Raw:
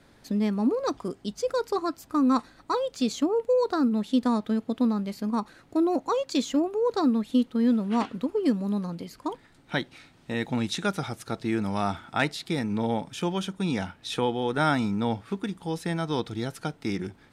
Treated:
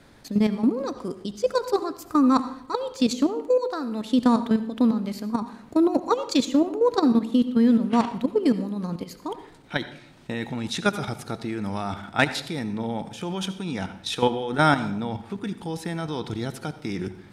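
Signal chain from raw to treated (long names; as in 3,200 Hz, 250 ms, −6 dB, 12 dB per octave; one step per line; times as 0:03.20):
0:02.43–0:02.70: time-frequency box erased 540–1,300 Hz
0:03.28–0:04.04: parametric band 120 Hz −12.5 dB 2.7 octaves
output level in coarse steps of 12 dB
convolution reverb RT60 0.70 s, pre-delay 63 ms, DRR 12.5 dB
level +7 dB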